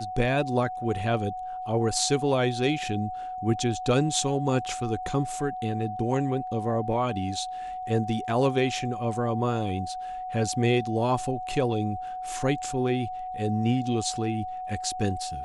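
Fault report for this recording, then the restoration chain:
tone 740 Hz -32 dBFS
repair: notch 740 Hz, Q 30

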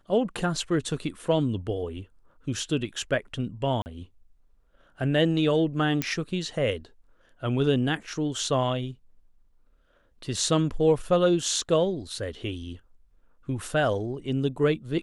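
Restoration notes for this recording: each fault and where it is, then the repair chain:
3.82–3.86 gap 39 ms
6.02 pop -10 dBFS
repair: de-click; interpolate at 3.82, 39 ms

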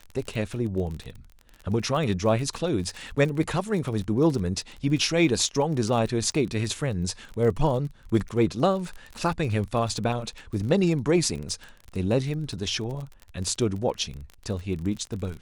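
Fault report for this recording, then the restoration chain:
crackle 30/s -32 dBFS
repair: de-click

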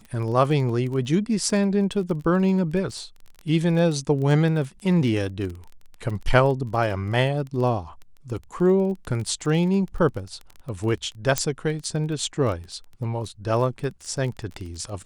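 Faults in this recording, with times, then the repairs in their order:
crackle 21/s -30 dBFS
11.38 pop -6 dBFS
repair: de-click

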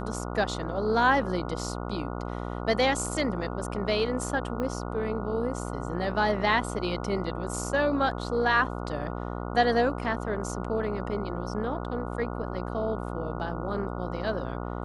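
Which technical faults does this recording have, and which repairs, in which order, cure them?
buzz 60 Hz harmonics 24 -34 dBFS
4.6 pop -20 dBFS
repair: de-click; de-hum 60 Hz, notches 24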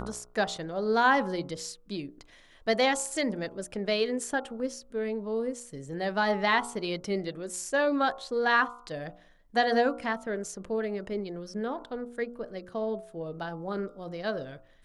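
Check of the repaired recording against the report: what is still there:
4.6 pop

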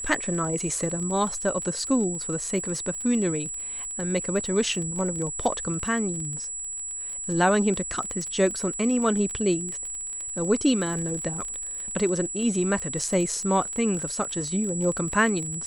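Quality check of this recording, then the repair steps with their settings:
crackle 24/s -30 dBFS
tone 7800 Hz -31 dBFS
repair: de-click; notch 7800 Hz, Q 30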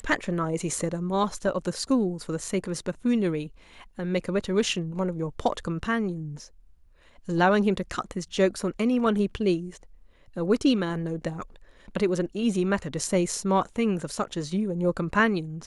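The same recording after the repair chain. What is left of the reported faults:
none

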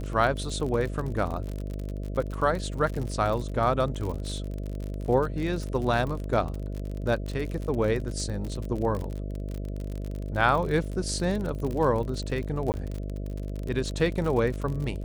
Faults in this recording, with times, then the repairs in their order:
buzz 50 Hz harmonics 13 -33 dBFS
crackle 49/s -31 dBFS
12.72–12.74 gap 19 ms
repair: de-click; de-hum 50 Hz, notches 13; interpolate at 12.72, 19 ms

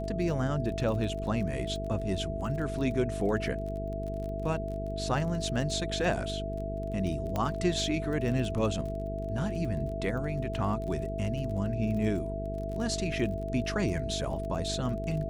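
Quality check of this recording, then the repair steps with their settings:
buzz 50 Hz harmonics 9 -36 dBFS
crackle 29/s -37 dBFS
tone 660 Hz -36 dBFS
7.36 pop -18 dBFS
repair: de-click; de-hum 50 Hz, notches 9; notch 660 Hz, Q 30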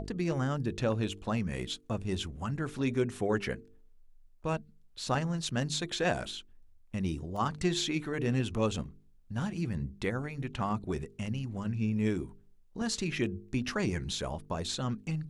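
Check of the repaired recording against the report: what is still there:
7.36 pop

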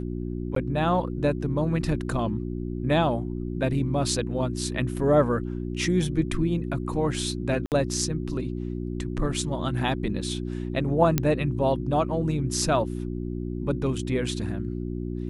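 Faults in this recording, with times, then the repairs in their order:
hum 60 Hz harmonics 6 -31 dBFS
0.55–0.56 gap 13 ms
7.66–7.72 gap 58 ms
11.18 pop -7 dBFS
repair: de-click; de-hum 60 Hz, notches 6; interpolate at 0.55, 13 ms; interpolate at 7.66, 58 ms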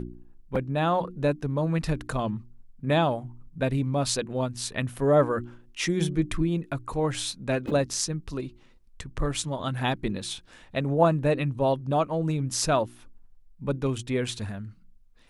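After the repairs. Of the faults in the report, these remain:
none

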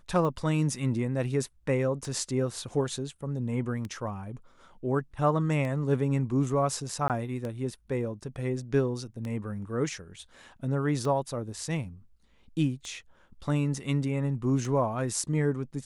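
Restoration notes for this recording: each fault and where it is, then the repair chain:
tick 33 1/3 rpm -23 dBFS
7.08–7.1 gap 18 ms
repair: de-click; interpolate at 7.08, 18 ms

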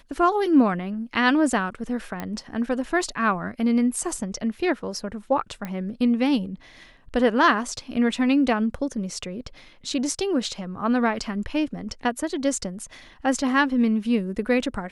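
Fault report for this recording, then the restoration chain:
2.2 pop -16 dBFS
5.65 pop -18 dBFS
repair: de-click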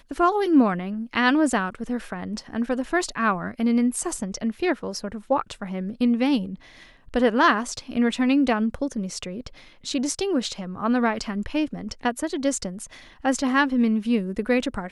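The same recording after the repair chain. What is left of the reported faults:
none

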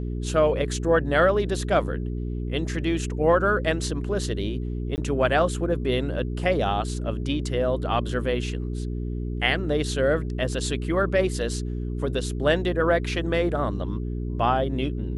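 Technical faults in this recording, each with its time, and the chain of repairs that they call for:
hum 60 Hz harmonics 7 -29 dBFS
4.96–4.98 gap 19 ms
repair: de-hum 60 Hz, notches 7; interpolate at 4.96, 19 ms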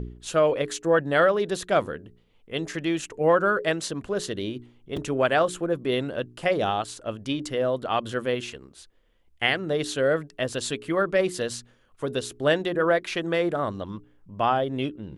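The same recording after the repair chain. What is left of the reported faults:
none

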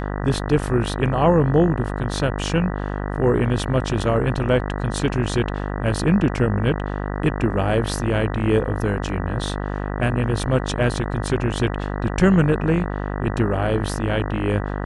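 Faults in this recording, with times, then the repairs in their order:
buzz 50 Hz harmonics 39 -26 dBFS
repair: de-hum 50 Hz, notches 39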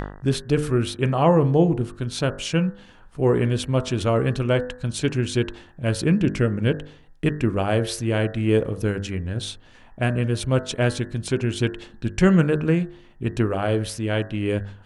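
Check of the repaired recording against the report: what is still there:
none

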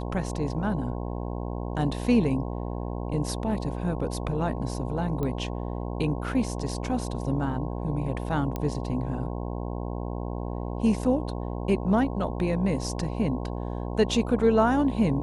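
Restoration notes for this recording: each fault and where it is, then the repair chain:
buzz 60 Hz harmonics 18 -32 dBFS
5.23 pop -19 dBFS
8.56 pop -17 dBFS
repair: de-click; de-hum 60 Hz, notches 18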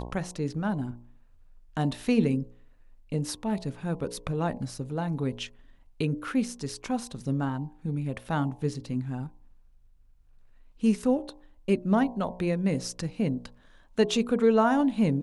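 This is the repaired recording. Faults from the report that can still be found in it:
none

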